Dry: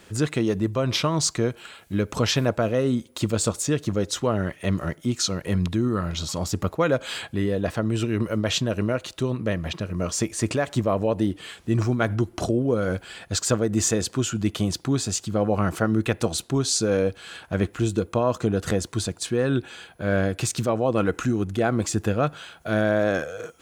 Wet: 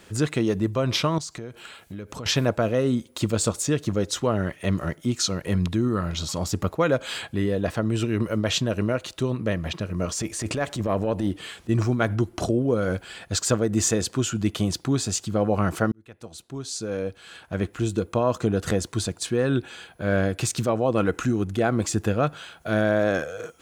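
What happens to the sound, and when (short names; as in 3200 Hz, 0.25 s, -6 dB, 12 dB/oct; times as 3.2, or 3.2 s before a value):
1.18–2.26 compressor 4:1, threshold -34 dBFS
10.05–11.69 transient shaper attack -10 dB, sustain +2 dB
15.92–18.28 fade in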